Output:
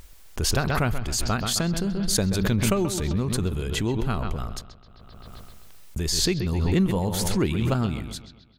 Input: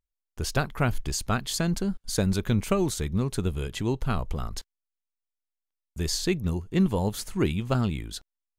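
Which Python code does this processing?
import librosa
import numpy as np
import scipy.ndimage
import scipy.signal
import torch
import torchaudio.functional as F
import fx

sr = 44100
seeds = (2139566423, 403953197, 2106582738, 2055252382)

y = fx.echo_bbd(x, sr, ms=131, stages=4096, feedback_pct=46, wet_db=-11.0)
y = fx.pre_swell(y, sr, db_per_s=22.0)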